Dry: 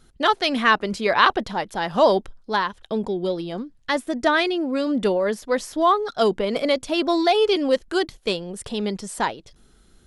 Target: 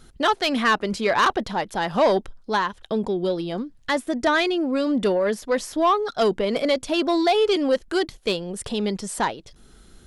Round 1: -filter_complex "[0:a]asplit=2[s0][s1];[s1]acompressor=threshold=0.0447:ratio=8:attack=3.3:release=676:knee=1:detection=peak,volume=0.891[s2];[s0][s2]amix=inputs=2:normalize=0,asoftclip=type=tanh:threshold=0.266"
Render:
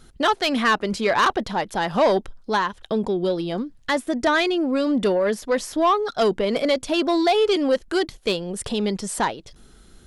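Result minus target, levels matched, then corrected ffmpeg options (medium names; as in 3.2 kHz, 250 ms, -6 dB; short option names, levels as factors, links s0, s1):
compression: peak gain reduction -7 dB
-filter_complex "[0:a]asplit=2[s0][s1];[s1]acompressor=threshold=0.0178:ratio=8:attack=3.3:release=676:knee=1:detection=peak,volume=0.891[s2];[s0][s2]amix=inputs=2:normalize=0,asoftclip=type=tanh:threshold=0.266"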